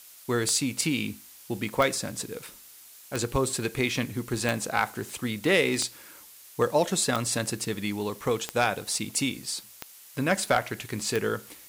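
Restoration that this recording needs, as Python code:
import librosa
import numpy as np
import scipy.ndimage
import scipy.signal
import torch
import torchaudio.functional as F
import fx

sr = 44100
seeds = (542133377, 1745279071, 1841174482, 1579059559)

y = fx.fix_declip(x, sr, threshold_db=-12.0)
y = fx.fix_declick_ar(y, sr, threshold=10.0)
y = fx.noise_reduce(y, sr, print_start_s=2.59, print_end_s=3.09, reduce_db=23.0)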